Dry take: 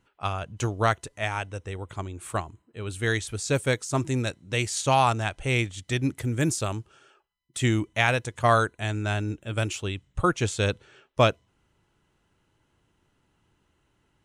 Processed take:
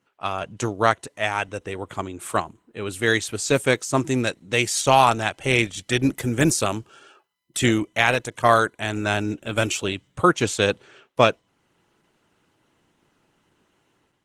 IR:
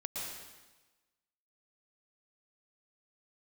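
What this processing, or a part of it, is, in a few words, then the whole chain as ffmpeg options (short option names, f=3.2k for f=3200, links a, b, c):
video call: -af "highpass=170,dynaudnorm=f=120:g=5:m=7.5dB" -ar 48000 -c:a libopus -b:a 16k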